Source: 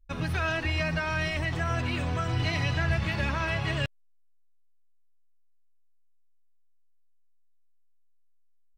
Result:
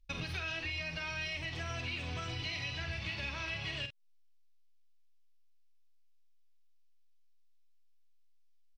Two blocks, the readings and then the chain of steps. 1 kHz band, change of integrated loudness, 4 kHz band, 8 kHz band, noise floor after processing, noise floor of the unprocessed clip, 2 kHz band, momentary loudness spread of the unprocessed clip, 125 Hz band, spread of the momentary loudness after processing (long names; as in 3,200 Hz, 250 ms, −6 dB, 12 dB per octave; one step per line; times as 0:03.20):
−13.0 dB, −9.0 dB, −3.0 dB, −5.5 dB, −61 dBFS, −60 dBFS, −8.0 dB, 2 LU, −13.5 dB, 2 LU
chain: flat-topped bell 3,600 Hz +11 dB
downward compressor 6 to 1, threshold −33 dBFS, peak gain reduction 13.5 dB
double-tracking delay 46 ms −8 dB
level −4 dB